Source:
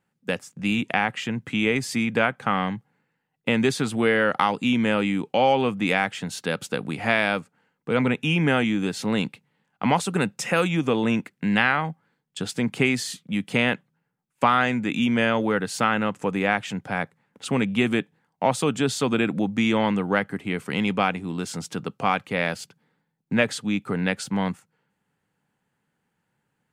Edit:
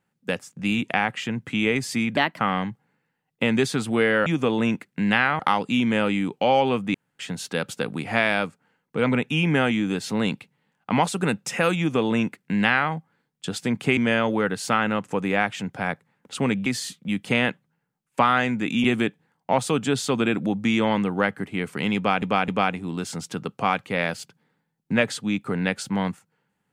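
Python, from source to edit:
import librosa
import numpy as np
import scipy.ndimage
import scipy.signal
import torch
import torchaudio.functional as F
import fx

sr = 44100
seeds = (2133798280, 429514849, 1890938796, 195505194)

y = fx.edit(x, sr, fx.speed_span(start_s=2.17, length_s=0.28, speed=1.26),
    fx.room_tone_fill(start_s=5.87, length_s=0.25),
    fx.duplicate(start_s=10.71, length_s=1.13, to_s=4.32),
    fx.move(start_s=12.9, length_s=2.18, to_s=17.77),
    fx.repeat(start_s=20.89, length_s=0.26, count=3), tone=tone)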